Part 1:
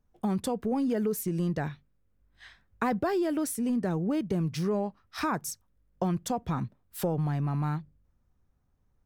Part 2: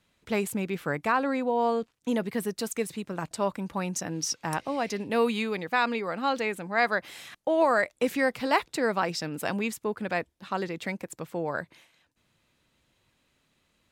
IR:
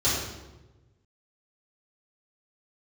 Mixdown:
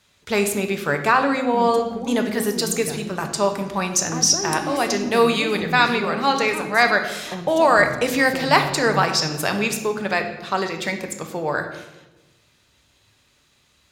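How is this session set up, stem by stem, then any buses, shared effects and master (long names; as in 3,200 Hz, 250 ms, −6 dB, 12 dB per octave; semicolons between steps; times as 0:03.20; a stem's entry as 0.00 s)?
−4.0 dB, 1.30 s, send −20 dB, echo send −5.5 dB, no processing
+3.0 dB, 0.00 s, send −17.5 dB, no echo send, drawn EQ curve 340 Hz 0 dB, 5,300 Hz +9 dB, 12,000 Hz +6 dB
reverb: on, RT60 1.1 s, pre-delay 3 ms
echo: repeating echo 367 ms, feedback 58%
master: no processing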